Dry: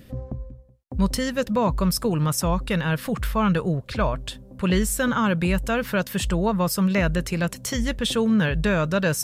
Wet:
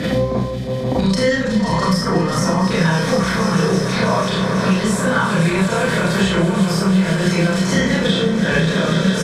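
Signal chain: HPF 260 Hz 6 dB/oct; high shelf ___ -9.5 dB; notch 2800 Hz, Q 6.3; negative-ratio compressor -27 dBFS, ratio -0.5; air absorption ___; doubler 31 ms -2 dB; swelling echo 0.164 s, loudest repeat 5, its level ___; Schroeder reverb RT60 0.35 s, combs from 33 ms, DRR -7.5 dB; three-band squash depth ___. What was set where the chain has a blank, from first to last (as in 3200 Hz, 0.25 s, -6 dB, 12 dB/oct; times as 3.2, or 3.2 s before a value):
6600 Hz, 65 m, -14.5 dB, 100%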